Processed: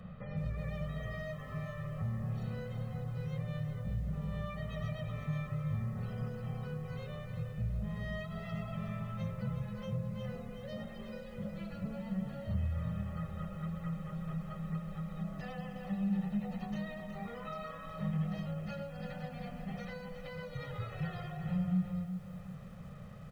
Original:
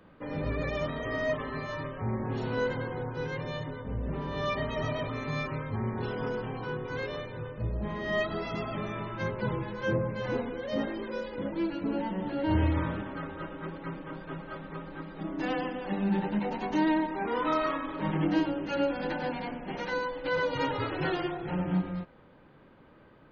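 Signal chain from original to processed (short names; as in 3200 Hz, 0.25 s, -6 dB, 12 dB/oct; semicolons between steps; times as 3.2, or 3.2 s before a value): comb 1.6 ms, depth 89%; compressor 2.5:1, threshold -51 dBFS, peak gain reduction 20.5 dB; resonant low shelf 240 Hz +7.5 dB, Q 3; lo-fi delay 0.366 s, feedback 35%, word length 10-bit, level -8.5 dB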